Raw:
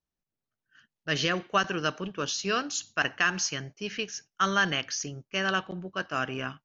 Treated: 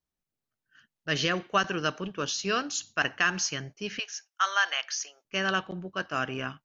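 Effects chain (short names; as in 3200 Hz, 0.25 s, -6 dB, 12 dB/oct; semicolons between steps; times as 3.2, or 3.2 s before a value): 3.99–5.25 HPF 680 Hz 24 dB/oct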